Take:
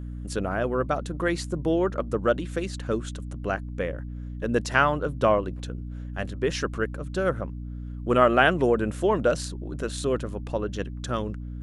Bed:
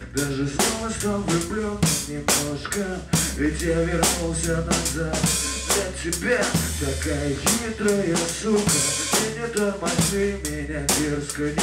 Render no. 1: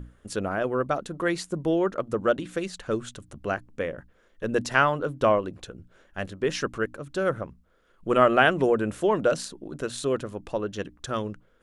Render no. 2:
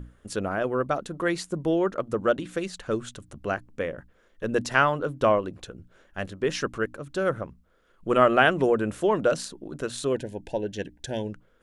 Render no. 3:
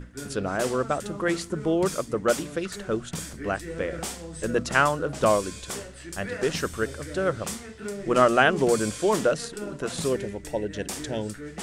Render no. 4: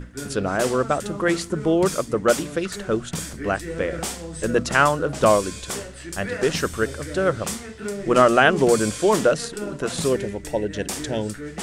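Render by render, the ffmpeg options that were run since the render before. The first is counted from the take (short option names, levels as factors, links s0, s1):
-af "bandreject=f=60:t=h:w=6,bandreject=f=120:t=h:w=6,bandreject=f=180:t=h:w=6,bandreject=f=240:t=h:w=6,bandreject=f=300:t=h:w=6"
-filter_complex "[0:a]asplit=3[s0][s1][s2];[s0]afade=t=out:st=10.13:d=0.02[s3];[s1]asuperstop=centerf=1200:order=12:qfactor=2.2,afade=t=in:st=10.13:d=0.02,afade=t=out:st=11.31:d=0.02[s4];[s2]afade=t=in:st=11.31:d=0.02[s5];[s3][s4][s5]amix=inputs=3:normalize=0"
-filter_complex "[1:a]volume=0.211[s0];[0:a][s0]amix=inputs=2:normalize=0"
-af "volume=1.68,alimiter=limit=0.708:level=0:latency=1"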